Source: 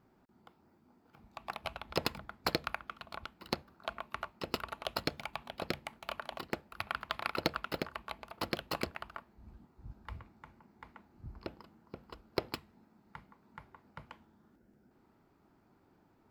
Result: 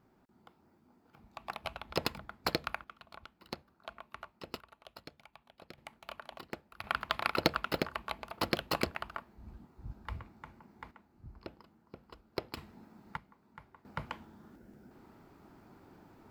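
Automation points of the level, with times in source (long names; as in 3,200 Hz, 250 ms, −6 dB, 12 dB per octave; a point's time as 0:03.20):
0 dB
from 0:02.84 −7 dB
from 0:04.60 −16 dB
from 0:05.78 −5.5 dB
from 0:06.84 +4 dB
from 0:10.91 −3.5 dB
from 0:12.57 +8.5 dB
from 0:13.17 −2 dB
from 0:13.85 +10 dB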